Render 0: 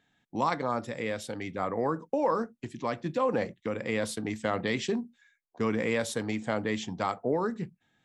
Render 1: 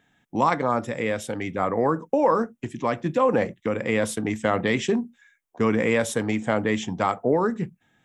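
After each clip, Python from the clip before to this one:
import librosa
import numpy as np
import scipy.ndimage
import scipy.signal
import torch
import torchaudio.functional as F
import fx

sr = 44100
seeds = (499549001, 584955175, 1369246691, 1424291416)

y = fx.peak_eq(x, sr, hz=4400.0, db=-10.5, octaves=0.43)
y = F.gain(torch.from_numpy(y), 7.0).numpy()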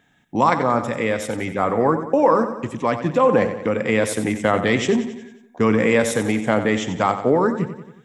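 y = fx.echo_feedback(x, sr, ms=91, feedback_pct=54, wet_db=-11.0)
y = F.gain(torch.from_numpy(y), 4.0).numpy()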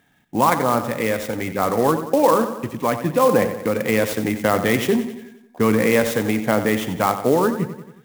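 y = fx.clock_jitter(x, sr, seeds[0], jitter_ms=0.03)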